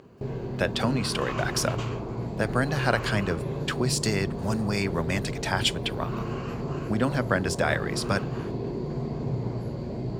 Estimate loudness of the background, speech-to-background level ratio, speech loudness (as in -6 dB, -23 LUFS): -32.5 LUFS, 4.5 dB, -28.0 LUFS